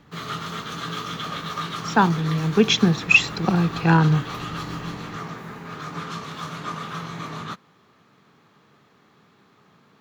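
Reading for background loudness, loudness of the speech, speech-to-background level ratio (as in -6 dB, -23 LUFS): -32.0 LUFS, -19.0 LUFS, 13.0 dB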